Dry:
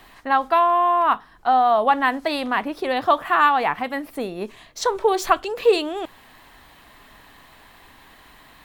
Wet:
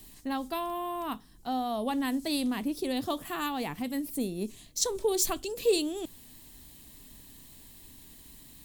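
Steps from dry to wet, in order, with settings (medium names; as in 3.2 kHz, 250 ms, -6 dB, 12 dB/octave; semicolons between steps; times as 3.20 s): FFT filter 260 Hz 0 dB, 700 Hz -16 dB, 1.4 kHz -21 dB, 7.7 kHz +7 dB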